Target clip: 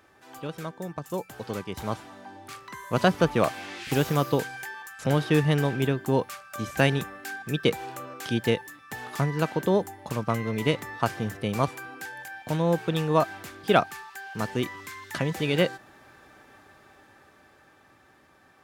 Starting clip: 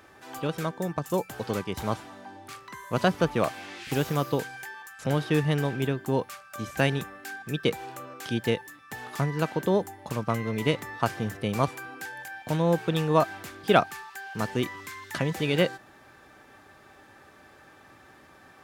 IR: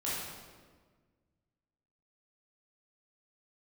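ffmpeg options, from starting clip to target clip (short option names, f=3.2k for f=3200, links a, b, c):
-af "dynaudnorm=f=140:g=31:m=11.5dB,volume=-5.5dB"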